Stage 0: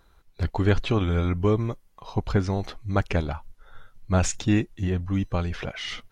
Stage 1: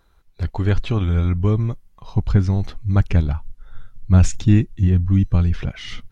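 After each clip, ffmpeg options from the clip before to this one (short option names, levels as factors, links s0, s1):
-af "asubboost=boost=5:cutoff=240,volume=0.891"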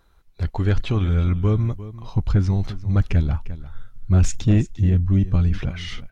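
-af "aecho=1:1:350:0.141,asoftclip=type=tanh:threshold=0.355"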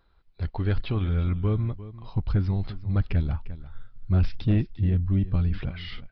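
-af "aresample=11025,aresample=44100,volume=0.531"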